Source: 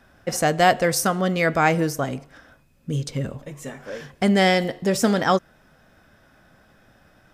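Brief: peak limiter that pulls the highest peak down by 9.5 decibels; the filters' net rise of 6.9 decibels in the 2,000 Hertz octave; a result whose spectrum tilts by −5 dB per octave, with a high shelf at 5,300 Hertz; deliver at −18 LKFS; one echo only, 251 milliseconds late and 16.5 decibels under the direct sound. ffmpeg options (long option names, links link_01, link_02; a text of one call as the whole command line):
ffmpeg -i in.wav -af "equalizer=frequency=2000:width_type=o:gain=9,highshelf=frequency=5300:gain=-7.5,alimiter=limit=-9.5dB:level=0:latency=1,aecho=1:1:251:0.15,volume=4dB" out.wav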